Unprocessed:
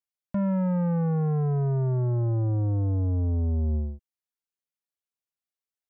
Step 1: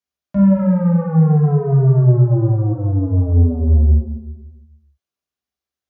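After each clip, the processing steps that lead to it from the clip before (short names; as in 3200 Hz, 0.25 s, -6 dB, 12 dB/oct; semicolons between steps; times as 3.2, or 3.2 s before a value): reverb RT60 1.1 s, pre-delay 3 ms, DRR -3.5 dB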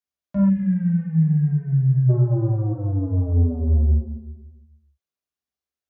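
spectral gain 0.49–2.1, 250–1500 Hz -25 dB; gain -5.5 dB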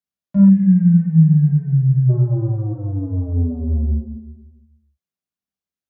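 bell 180 Hz +11.5 dB 0.91 oct; gain -3 dB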